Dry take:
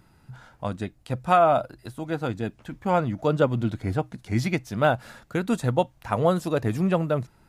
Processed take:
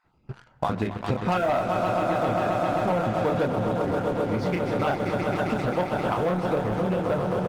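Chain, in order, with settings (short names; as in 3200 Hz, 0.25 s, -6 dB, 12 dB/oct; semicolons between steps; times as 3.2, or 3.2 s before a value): random spectral dropouts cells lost 25%; doubler 28 ms -4.5 dB; de-esser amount 35%; air absorption 160 m; notches 50/100/150/200 Hz; on a send: swelling echo 0.132 s, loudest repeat 5, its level -9.5 dB; on the sum: sample leveller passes 3; compressor 16:1, threshold -23 dBFS, peak gain reduction 15.5 dB; low shelf 210 Hz -3 dB; gain +2.5 dB; Opus 24 kbps 48000 Hz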